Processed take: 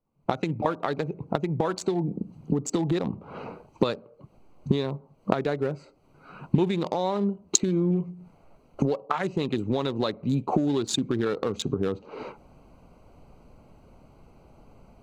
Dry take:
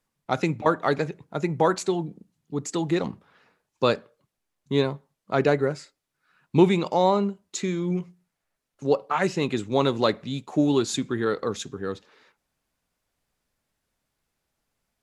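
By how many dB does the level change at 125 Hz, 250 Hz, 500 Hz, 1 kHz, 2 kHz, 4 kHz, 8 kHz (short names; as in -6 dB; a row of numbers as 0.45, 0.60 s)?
+0.5, -1.0, -4.0, -4.0, -6.5, -1.5, +5.0 dB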